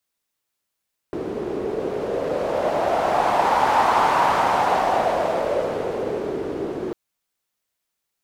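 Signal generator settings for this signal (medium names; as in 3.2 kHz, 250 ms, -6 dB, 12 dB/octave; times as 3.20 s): wind-like swept noise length 5.80 s, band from 370 Hz, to 900 Hz, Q 3.6, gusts 1, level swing 10 dB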